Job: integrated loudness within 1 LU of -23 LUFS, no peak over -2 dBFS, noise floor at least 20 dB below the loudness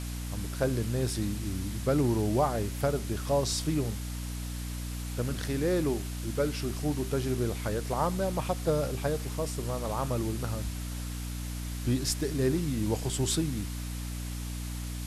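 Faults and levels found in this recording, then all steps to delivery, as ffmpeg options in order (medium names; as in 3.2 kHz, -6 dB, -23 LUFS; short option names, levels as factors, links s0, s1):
hum 60 Hz; highest harmonic 300 Hz; hum level -33 dBFS; noise floor -36 dBFS; noise floor target -52 dBFS; loudness -31.5 LUFS; peak level -15.0 dBFS; loudness target -23.0 LUFS
-> -af "bandreject=f=60:t=h:w=4,bandreject=f=120:t=h:w=4,bandreject=f=180:t=h:w=4,bandreject=f=240:t=h:w=4,bandreject=f=300:t=h:w=4"
-af "afftdn=nr=16:nf=-36"
-af "volume=2.66"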